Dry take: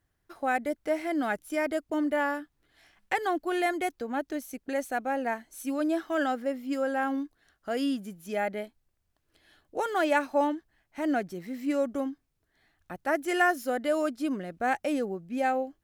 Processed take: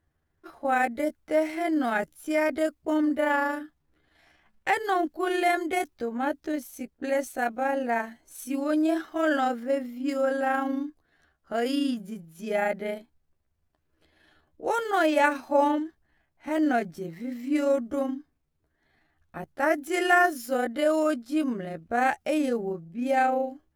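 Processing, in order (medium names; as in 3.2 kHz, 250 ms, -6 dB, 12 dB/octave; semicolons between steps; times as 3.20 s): granular stretch 1.5×, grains 77 ms; tape noise reduction on one side only decoder only; trim +4 dB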